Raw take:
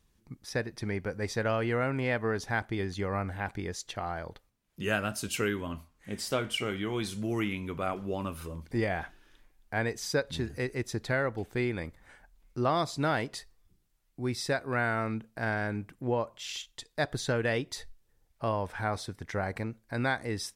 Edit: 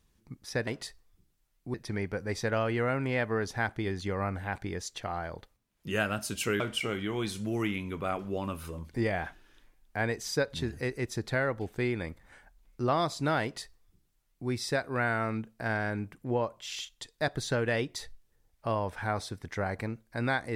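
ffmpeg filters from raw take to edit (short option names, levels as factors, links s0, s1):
-filter_complex "[0:a]asplit=4[s0][s1][s2][s3];[s0]atrim=end=0.672[s4];[s1]atrim=start=13.188:end=14.262[s5];[s2]atrim=start=0.668:end=5.532[s6];[s3]atrim=start=6.368[s7];[s4][s5]acrossfade=d=0.004:c1=hsin:c2=hsin[s8];[s8][s6]acrossfade=d=0.004:c1=hsin:c2=hsin[s9];[s9][s7]acrossfade=d=0.004:c1=hsin:c2=hsin"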